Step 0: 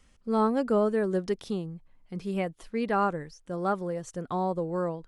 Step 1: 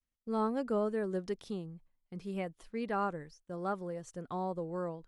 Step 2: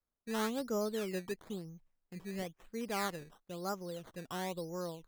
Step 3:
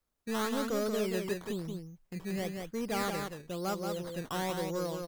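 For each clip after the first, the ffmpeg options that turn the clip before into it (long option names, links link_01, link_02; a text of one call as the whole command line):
ffmpeg -i in.wav -af "agate=range=-33dB:threshold=-46dB:ratio=3:detection=peak,volume=-7.5dB" out.wav
ffmpeg -i in.wav -af "acrusher=samples=14:mix=1:aa=0.000001:lfo=1:lforange=14:lforate=1,volume=-3dB" out.wav
ffmpeg -i in.wav -af "asoftclip=type=tanh:threshold=-35.5dB,aecho=1:1:180:0.562,volume=7dB" out.wav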